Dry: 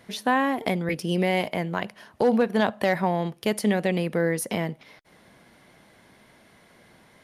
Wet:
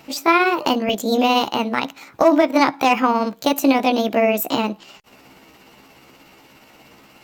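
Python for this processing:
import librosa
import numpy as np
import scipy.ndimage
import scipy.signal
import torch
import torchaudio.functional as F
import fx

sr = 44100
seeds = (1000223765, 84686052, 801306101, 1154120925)

y = fx.pitch_heads(x, sr, semitones=5.0)
y = y * 10.0 ** (8.0 / 20.0)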